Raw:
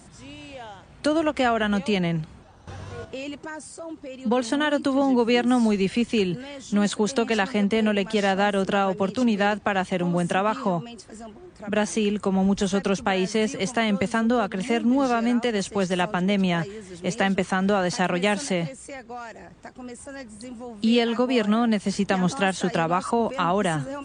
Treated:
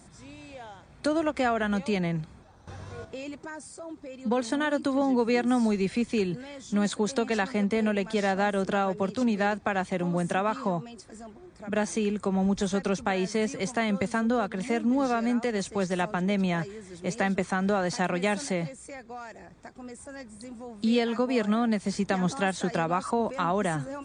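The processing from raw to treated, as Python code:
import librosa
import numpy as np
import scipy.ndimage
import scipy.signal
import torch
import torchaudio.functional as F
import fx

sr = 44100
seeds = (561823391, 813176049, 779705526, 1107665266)

y = fx.notch(x, sr, hz=2900.0, q=7.1)
y = y * 10.0 ** (-4.0 / 20.0)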